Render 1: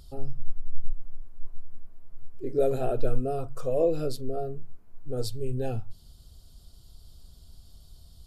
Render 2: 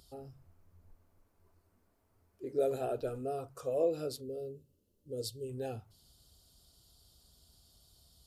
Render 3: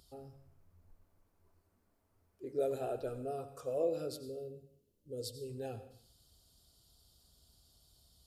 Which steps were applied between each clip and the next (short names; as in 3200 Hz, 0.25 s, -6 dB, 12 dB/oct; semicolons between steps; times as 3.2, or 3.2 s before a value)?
spectral gain 4.21–5.48, 620–2600 Hz -18 dB; HPF 54 Hz 12 dB/oct; tone controls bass -7 dB, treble +3 dB; gain -5.5 dB
plate-style reverb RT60 0.57 s, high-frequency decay 0.95×, pre-delay 75 ms, DRR 11.5 dB; gain -3 dB